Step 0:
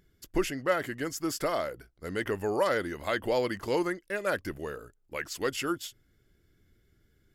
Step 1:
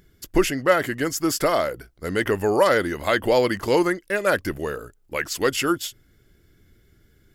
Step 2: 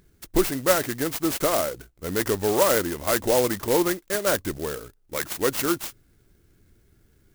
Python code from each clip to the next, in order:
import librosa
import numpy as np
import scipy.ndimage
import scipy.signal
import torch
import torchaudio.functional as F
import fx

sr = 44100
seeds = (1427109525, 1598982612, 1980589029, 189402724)

y1 = fx.high_shelf(x, sr, hz=11000.0, db=3.0)
y1 = F.gain(torch.from_numpy(y1), 9.0).numpy()
y2 = fx.clock_jitter(y1, sr, seeds[0], jitter_ms=0.094)
y2 = F.gain(torch.from_numpy(y2), -2.0).numpy()